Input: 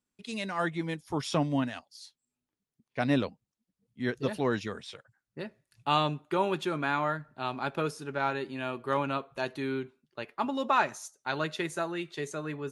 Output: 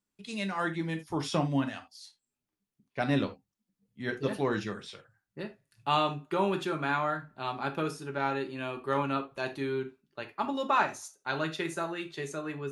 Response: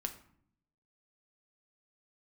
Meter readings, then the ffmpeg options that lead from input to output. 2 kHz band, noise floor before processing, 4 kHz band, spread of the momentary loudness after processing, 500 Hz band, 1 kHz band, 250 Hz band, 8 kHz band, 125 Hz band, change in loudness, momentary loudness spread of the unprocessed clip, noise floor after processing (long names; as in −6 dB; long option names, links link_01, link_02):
−0.5 dB, below −85 dBFS, −1.0 dB, 15 LU, −0.5 dB, −0.5 dB, −0.5 dB, −1.0 dB, 0.0 dB, −0.5 dB, 15 LU, below −85 dBFS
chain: -filter_complex "[1:a]atrim=start_sample=2205,atrim=end_sample=3969[link_01];[0:a][link_01]afir=irnorm=-1:irlink=0"